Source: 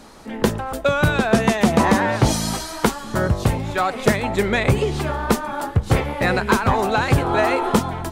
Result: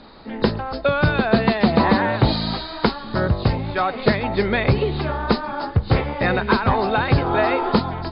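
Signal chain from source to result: knee-point frequency compression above 3.6 kHz 4:1; distance through air 110 m

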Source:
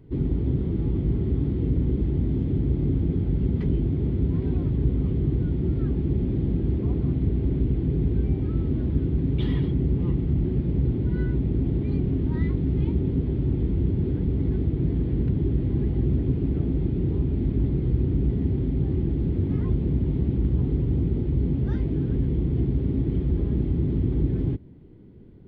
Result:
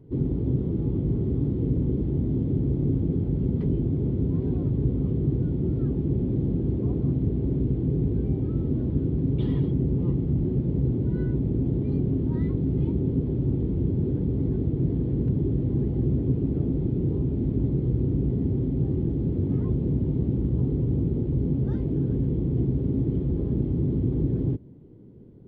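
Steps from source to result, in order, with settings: graphic EQ 125/250/500/1000/2000 Hz +7/+5/+8/+3/-4 dB; trim -7 dB

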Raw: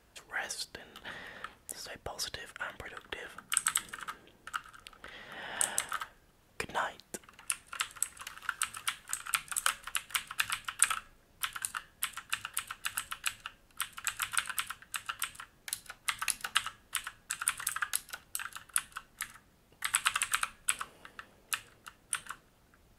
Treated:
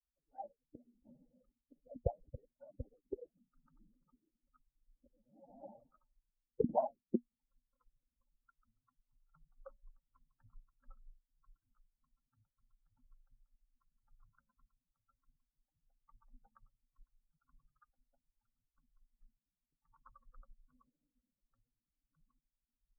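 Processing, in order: expander on every frequency bin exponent 3; steep low-pass 720 Hz 48 dB/octave; peaking EQ 240 Hz +10.5 dB 0.26 oct; trim +13.5 dB

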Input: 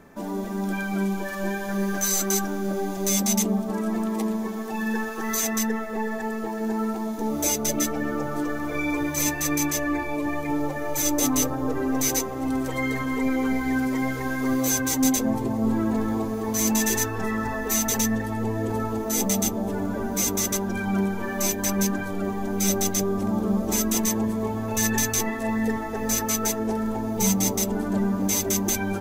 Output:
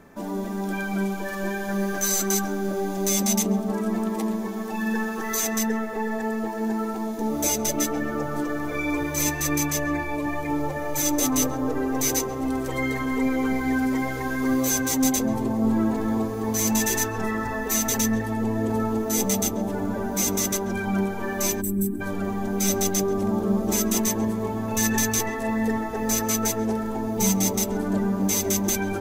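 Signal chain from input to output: on a send: filtered feedback delay 135 ms, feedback 76%, low-pass 1.5 kHz, level -12 dB; on the sum: time-frequency box 21.61–22.01 s, 430–7600 Hz -22 dB

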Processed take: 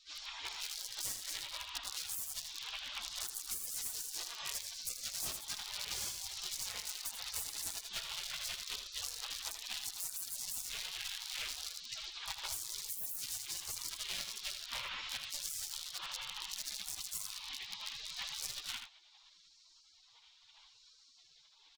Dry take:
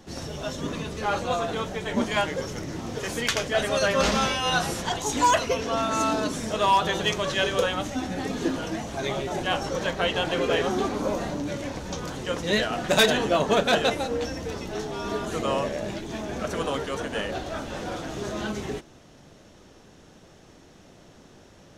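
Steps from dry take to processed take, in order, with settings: high-pass 49 Hz 12 dB/octave; dynamic bell 610 Hz, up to -5 dB, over -36 dBFS, Q 2.4; in parallel at +3 dB: peak limiter -22.5 dBFS, peak gain reduction 11.5 dB; on the sum: low-pass 2.4 kHz 24 dB/octave; hum notches 50/100/150/200 Hz; rotary cabinet horn 0.75 Hz; wavefolder -20 dBFS; tilt EQ +2.5 dB/octave; spectral gate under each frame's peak -30 dB weak; on a send: delay 79 ms -9.5 dB; on the sum: harmony voices +4 st -7 dB; compression 5:1, threshold -51 dBFS, peak gain reduction 13.5 dB; trim +13.5 dB

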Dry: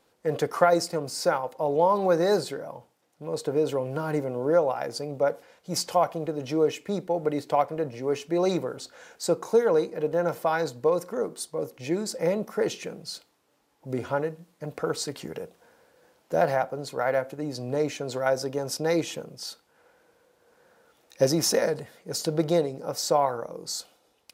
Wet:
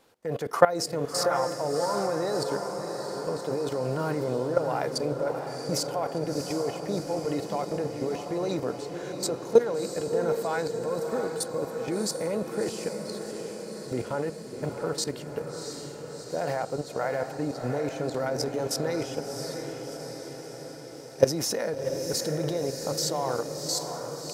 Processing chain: level held to a coarse grid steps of 17 dB; echo that smears into a reverb 694 ms, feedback 64%, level -6.5 dB; trim +5 dB

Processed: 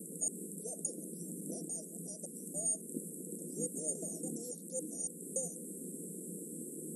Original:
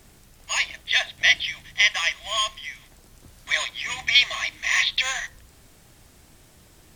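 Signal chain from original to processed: slices played last to first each 282 ms, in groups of 2; FFT band-pass 160–12000 Hz; in parallel at 0 dB: compression, threshold -29 dBFS, peak gain reduction 16.5 dB; on the sum: Chebyshev band-stop 490–8000 Hz, order 5; trim +8.5 dB

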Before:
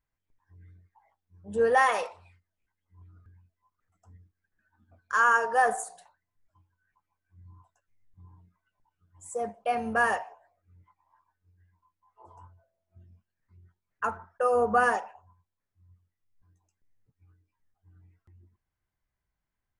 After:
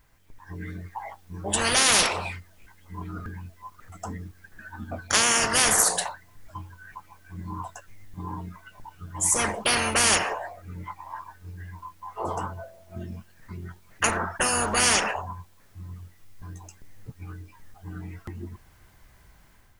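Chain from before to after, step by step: level rider gain up to 6.5 dB; spectrum-flattening compressor 10:1

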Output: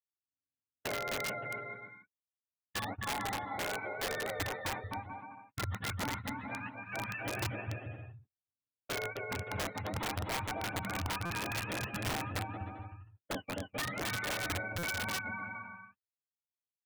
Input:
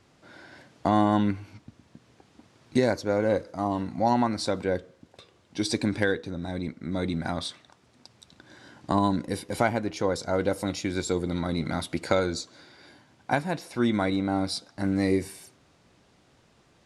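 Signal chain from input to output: spectrum inverted on a logarithmic axis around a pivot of 660 Hz; compression 16:1, threshold -30 dBFS, peak gain reduction 12.5 dB; distance through air 78 m; resampled via 8 kHz; gate -36 dBFS, range -59 dB; on a send: bouncing-ball echo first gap 260 ms, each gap 0.7×, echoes 5; on the sum: integer overflow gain 26 dB; buffer glitch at 11.25/14.78 s, samples 256, times 8; trim -3 dB

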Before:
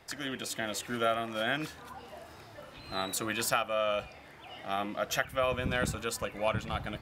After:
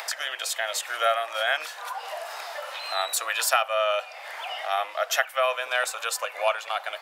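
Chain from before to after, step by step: steep high-pass 590 Hz 36 dB/octave; upward compressor, threshold -33 dBFS; trim +7.5 dB

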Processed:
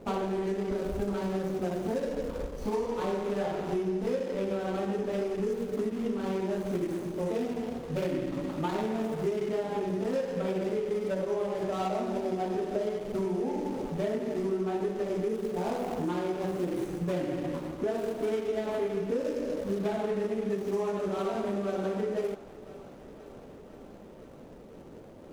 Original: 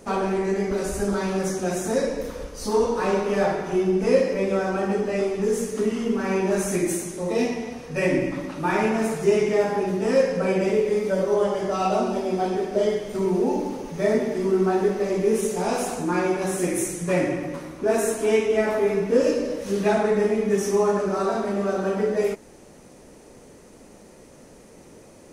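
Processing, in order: median filter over 25 samples; compression, threshold -28 dBFS, peak gain reduction 14 dB; thinning echo 511 ms, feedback 82%, high-pass 340 Hz, level -18.5 dB

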